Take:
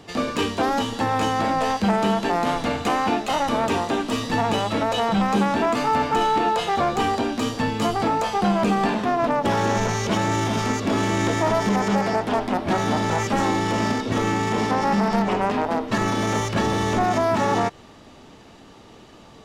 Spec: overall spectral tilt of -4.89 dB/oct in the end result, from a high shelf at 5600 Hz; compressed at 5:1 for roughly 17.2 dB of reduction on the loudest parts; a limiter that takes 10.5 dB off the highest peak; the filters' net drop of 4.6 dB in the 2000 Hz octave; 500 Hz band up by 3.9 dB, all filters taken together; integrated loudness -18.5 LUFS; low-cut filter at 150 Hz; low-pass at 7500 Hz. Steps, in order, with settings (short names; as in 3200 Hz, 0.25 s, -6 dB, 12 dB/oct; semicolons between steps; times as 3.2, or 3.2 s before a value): HPF 150 Hz; LPF 7500 Hz; bell 500 Hz +5.5 dB; bell 2000 Hz -6.5 dB; high shelf 5600 Hz +4.5 dB; compressor 5:1, threshold -36 dBFS; gain +24 dB; limiter -10 dBFS